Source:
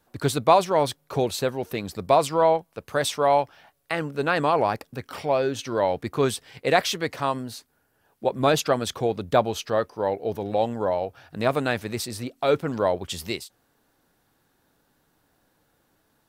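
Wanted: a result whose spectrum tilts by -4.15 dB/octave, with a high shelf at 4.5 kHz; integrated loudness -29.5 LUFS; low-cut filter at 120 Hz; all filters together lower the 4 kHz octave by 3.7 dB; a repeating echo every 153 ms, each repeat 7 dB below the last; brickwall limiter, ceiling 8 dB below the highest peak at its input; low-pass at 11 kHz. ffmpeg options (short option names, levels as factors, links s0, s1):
-af "highpass=120,lowpass=11000,equalizer=f=4000:t=o:g=-8.5,highshelf=f=4500:g=8,alimiter=limit=0.251:level=0:latency=1,aecho=1:1:153|306|459|612|765:0.447|0.201|0.0905|0.0407|0.0183,volume=0.631"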